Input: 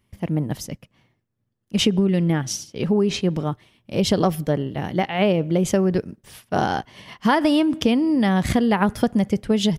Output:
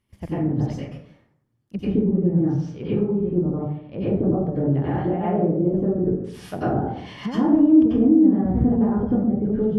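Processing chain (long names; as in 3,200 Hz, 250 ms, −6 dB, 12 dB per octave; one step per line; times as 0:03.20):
treble cut that deepens with the level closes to 390 Hz, closed at −18 dBFS
0:02.60–0:04.34: high-frequency loss of the air 370 metres
dense smooth reverb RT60 0.72 s, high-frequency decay 0.5×, pre-delay 80 ms, DRR −10 dB
level −7.5 dB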